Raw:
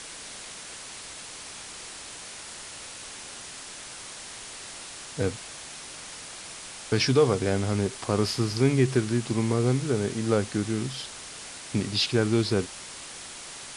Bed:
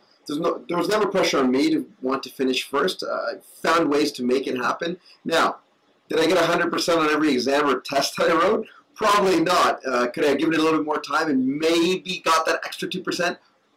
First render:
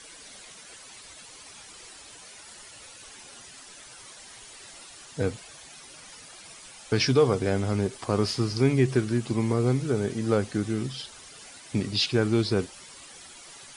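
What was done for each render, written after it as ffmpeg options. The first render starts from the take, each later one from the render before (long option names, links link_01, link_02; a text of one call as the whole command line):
ffmpeg -i in.wav -af "afftdn=noise_reduction=11:noise_floor=-42" out.wav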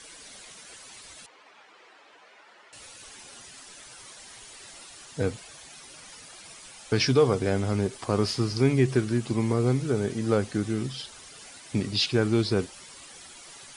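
ffmpeg -i in.wav -filter_complex "[0:a]asettb=1/sr,asplit=3[link_01][link_02][link_03];[link_01]atrim=end=1.264[link_04];[link_02]atrim=start=1.26:end=2.73,asetpts=PTS-STARTPTS,afade=type=in:duration=0.004:curve=qsin,afade=type=out:start_time=1.466:duration=0.004:curve=qsin,highpass=400,lowpass=2100[link_05];[link_03]atrim=start=2.726[link_06];[link_04][link_05]acrossfade=duration=0.004:curve1=hsin:curve2=qsin[link_07];[link_07][link_06]acrossfade=duration=0.004:curve1=qsin:curve2=hsin" out.wav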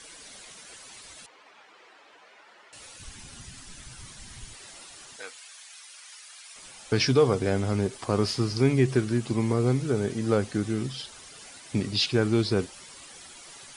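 ffmpeg -i in.wav -filter_complex "[0:a]asplit=3[link_01][link_02][link_03];[link_01]afade=type=out:start_time=2.98:duration=0.02[link_04];[link_02]asubboost=boost=11:cutoff=160,afade=type=in:start_time=2.98:duration=0.02,afade=type=out:start_time=4.53:duration=0.02[link_05];[link_03]afade=type=in:start_time=4.53:duration=0.02[link_06];[link_04][link_05][link_06]amix=inputs=3:normalize=0,asettb=1/sr,asplit=3[link_07][link_08][link_09];[link_07]atrim=end=5.164[link_10];[link_08]atrim=start=5.16:end=6.56,asetpts=PTS-STARTPTS,afade=type=in:duration=0.004:curve=qsin,afade=type=out:start_time=1.396:duration=0.004:curve=qsin,highpass=1300[link_11];[link_09]atrim=start=6.556[link_12];[link_10][link_11]acrossfade=duration=0.004:curve1=hsin:curve2=qsin[link_13];[link_13][link_12]acrossfade=duration=0.004:curve1=qsin:curve2=hsin" out.wav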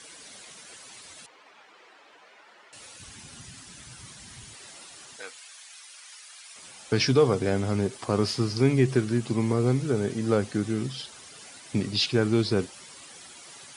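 ffmpeg -i in.wav -af "highpass=100,lowshelf=frequency=140:gain=3" out.wav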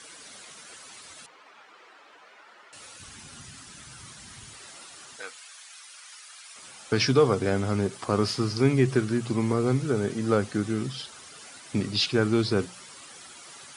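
ffmpeg -i in.wav -af "equalizer=frequency=1300:width=2.7:gain=4.5,bandreject=frequency=60:width_type=h:width=6,bandreject=frequency=120:width_type=h:width=6,bandreject=frequency=180:width_type=h:width=6" out.wav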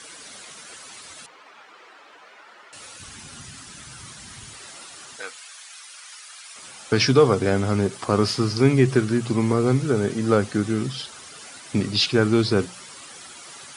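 ffmpeg -i in.wav -af "volume=4.5dB" out.wav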